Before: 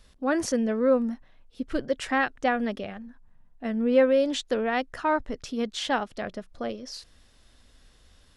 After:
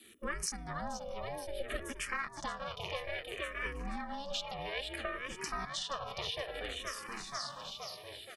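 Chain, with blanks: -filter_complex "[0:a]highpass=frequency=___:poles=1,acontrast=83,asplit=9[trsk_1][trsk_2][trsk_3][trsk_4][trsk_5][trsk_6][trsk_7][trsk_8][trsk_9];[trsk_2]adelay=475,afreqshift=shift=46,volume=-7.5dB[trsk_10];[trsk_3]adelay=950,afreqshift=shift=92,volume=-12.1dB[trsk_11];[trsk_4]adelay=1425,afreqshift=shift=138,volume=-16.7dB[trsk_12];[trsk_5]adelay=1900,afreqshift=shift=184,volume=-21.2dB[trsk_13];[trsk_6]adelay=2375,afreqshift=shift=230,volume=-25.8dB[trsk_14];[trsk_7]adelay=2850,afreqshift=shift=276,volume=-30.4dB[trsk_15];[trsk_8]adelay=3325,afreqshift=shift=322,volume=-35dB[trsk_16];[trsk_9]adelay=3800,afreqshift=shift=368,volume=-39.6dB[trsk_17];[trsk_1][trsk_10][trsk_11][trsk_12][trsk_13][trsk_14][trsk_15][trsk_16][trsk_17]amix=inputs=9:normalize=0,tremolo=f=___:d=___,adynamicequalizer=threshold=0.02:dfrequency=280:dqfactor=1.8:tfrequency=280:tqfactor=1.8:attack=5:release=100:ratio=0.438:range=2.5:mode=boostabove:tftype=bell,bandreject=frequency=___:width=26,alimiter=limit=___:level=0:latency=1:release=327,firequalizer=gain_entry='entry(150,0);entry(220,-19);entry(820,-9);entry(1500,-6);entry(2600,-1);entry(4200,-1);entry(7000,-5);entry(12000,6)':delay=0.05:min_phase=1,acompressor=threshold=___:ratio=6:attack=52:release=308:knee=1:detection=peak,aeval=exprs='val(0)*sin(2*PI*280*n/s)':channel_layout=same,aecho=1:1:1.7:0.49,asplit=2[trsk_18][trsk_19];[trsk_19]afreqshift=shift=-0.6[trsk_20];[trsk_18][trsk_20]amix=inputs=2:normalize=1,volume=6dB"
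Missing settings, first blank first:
150, 200, 0.261, 4400, -8dB, -40dB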